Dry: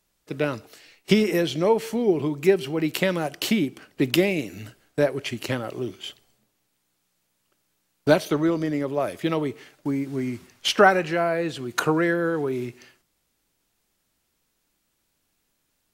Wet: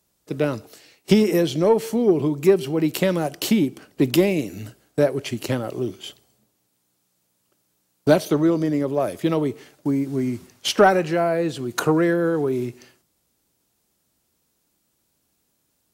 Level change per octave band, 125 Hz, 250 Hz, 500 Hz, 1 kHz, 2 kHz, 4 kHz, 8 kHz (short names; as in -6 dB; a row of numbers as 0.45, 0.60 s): +4.0, +3.5, +3.0, +1.0, -2.5, -0.5, +3.0 dB